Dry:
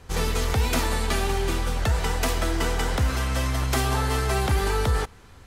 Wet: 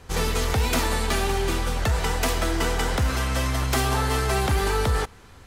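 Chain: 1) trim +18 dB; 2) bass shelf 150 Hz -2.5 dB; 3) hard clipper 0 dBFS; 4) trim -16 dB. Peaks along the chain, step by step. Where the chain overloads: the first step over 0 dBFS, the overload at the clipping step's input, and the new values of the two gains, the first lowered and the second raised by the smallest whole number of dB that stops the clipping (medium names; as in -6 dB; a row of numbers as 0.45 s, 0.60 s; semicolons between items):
+6.0 dBFS, +5.5 dBFS, 0.0 dBFS, -16.0 dBFS; step 1, 5.5 dB; step 1 +12 dB, step 4 -10 dB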